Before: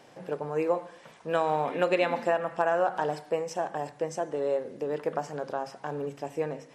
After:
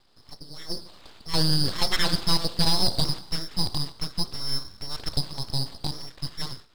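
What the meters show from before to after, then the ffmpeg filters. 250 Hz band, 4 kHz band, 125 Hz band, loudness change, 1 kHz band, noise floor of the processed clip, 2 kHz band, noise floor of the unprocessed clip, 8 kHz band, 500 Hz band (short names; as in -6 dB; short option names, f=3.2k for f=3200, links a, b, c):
+3.5 dB, +21.5 dB, +12.0 dB, +3.0 dB, -6.5 dB, -55 dBFS, -1.0 dB, -54 dBFS, +13.0 dB, -12.0 dB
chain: -af "highpass=f=620:w=0.5412,highpass=f=620:w=1.3066,asoftclip=type=hard:threshold=-21.5dB,dynaudnorm=f=590:g=3:m=13dB,lowpass=f=2.7k:t=q:w=0.5098,lowpass=f=2.7k:t=q:w=0.6013,lowpass=f=2.7k:t=q:w=0.9,lowpass=f=2.7k:t=q:w=2.563,afreqshift=-3200,aeval=exprs='abs(val(0))':c=same,volume=-3.5dB"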